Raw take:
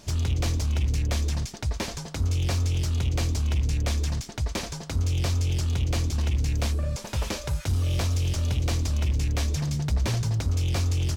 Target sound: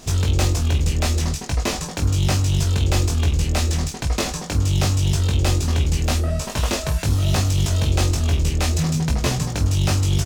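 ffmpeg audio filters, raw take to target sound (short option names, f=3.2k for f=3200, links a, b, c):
-af "equalizer=f=95:w=5.9:g=-9,aecho=1:1:22|52:0.668|0.266,asetrate=48000,aresample=44100,volume=6.5dB"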